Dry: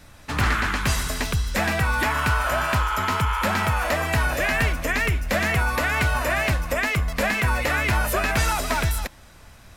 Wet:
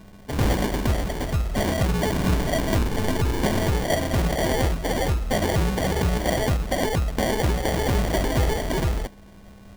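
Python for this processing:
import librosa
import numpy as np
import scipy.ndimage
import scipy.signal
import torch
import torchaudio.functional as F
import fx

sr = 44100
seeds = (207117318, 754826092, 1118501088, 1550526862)

y = x + 10.0 ** (-48.0 / 20.0) * np.sin(2.0 * np.pi * 1500.0 * np.arange(len(x)) / sr)
y = fx.sample_hold(y, sr, seeds[0], rate_hz=1300.0, jitter_pct=0)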